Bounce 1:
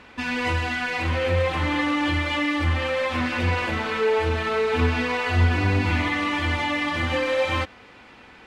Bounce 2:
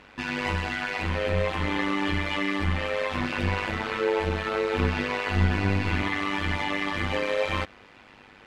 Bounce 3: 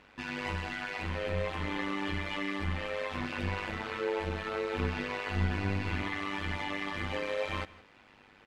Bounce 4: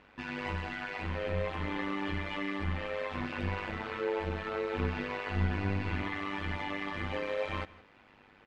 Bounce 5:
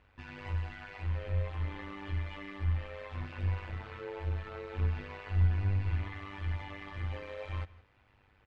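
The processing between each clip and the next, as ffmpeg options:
-af "tremolo=f=100:d=0.824"
-af "aecho=1:1:165:0.0944,volume=0.422"
-af "lowpass=f=2900:p=1"
-af "lowshelf=f=140:t=q:w=1.5:g=11,volume=0.376"

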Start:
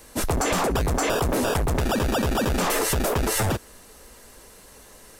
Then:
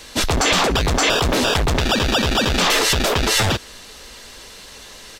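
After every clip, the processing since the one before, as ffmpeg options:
-filter_complex "[0:a]firequalizer=gain_entry='entry(500,0);entry(3500,13);entry(9900,-4)':delay=0.05:min_phase=1,asplit=2[s0][s1];[s1]alimiter=limit=0.15:level=0:latency=1,volume=0.75[s2];[s0][s2]amix=inputs=2:normalize=0"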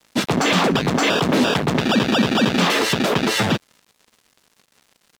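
-af "highpass=f=170:w=0.5412,highpass=f=170:w=1.3066,bass=f=250:g=13,treble=f=4000:g=-7,aeval=exprs='sgn(val(0))*max(abs(val(0))-0.0158,0)':c=same"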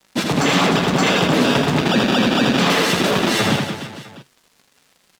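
-filter_complex "[0:a]flanger=delay=5.2:depth=2.1:regen=73:speed=0.97:shape=sinusoidal,asplit=2[s0][s1];[s1]aecho=0:1:80|180|305|461.2|656.6:0.631|0.398|0.251|0.158|0.1[s2];[s0][s2]amix=inputs=2:normalize=0,volume=1.58"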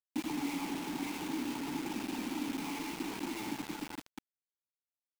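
-filter_complex "[0:a]acompressor=threshold=0.0631:ratio=10,asplit=3[s0][s1][s2];[s0]bandpass=f=300:t=q:w=8,volume=1[s3];[s1]bandpass=f=870:t=q:w=8,volume=0.501[s4];[s2]bandpass=f=2240:t=q:w=8,volume=0.355[s5];[s3][s4][s5]amix=inputs=3:normalize=0,acrusher=bits=6:mix=0:aa=0.000001"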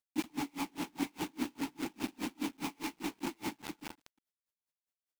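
-af "aeval=exprs='val(0)*pow(10,-36*(0.5-0.5*cos(2*PI*4.9*n/s))/20)':c=same,volume=1.88"

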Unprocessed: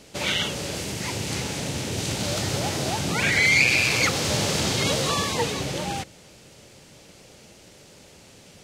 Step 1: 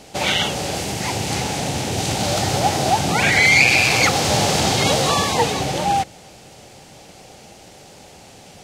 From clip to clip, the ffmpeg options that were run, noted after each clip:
-af "equalizer=f=770:w=4:g=11,volume=1.78"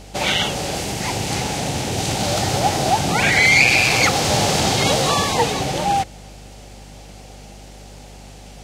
-af "aeval=exprs='val(0)+0.01*(sin(2*PI*50*n/s)+sin(2*PI*2*50*n/s)/2+sin(2*PI*3*50*n/s)/3+sin(2*PI*4*50*n/s)/4+sin(2*PI*5*50*n/s)/5)':c=same"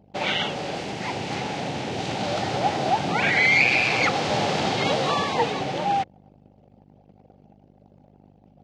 -af "anlmdn=2.51,highpass=150,lowpass=3500,volume=0.631"

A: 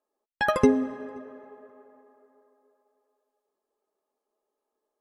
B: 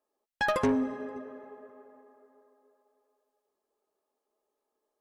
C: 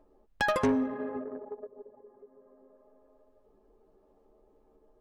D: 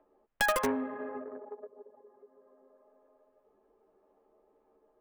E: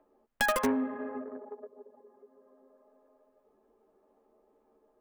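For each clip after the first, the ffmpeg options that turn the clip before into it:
-af "asoftclip=type=tanh:threshold=0.0891"
-af "anlmdn=0.251,acompressor=mode=upward:threshold=0.0398:ratio=2.5"
-filter_complex "[0:a]aemphasis=mode=production:type=riaa,acrossover=split=280|490|2600[s0][s1][s2][s3];[s3]acrusher=bits=3:dc=4:mix=0:aa=0.000001[s4];[s0][s1][s2][s4]amix=inputs=4:normalize=0"
-af "equalizer=f=240:w=6.4:g=9.5"

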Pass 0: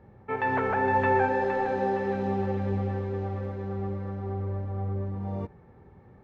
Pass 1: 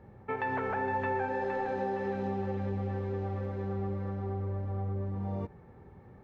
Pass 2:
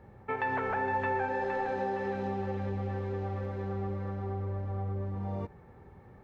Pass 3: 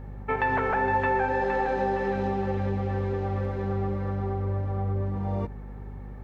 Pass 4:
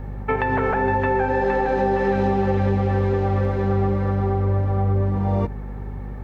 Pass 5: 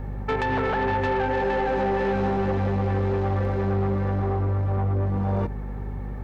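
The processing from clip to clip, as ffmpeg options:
-af "acompressor=threshold=0.0282:ratio=3"
-af "equalizer=f=200:w=0.41:g=-4,volume=1.33"
-af "aeval=exprs='val(0)+0.00631*(sin(2*PI*50*n/s)+sin(2*PI*2*50*n/s)/2+sin(2*PI*3*50*n/s)/3+sin(2*PI*4*50*n/s)/4+sin(2*PI*5*50*n/s)/5)':c=same,volume=2"
-filter_complex "[0:a]acrossover=split=490[s0][s1];[s1]acompressor=threshold=0.0316:ratio=6[s2];[s0][s2]amix=inputs=2:normalize=0,volume=2.51"
-af "asoftclip=type=tanh:threshold=0.112"

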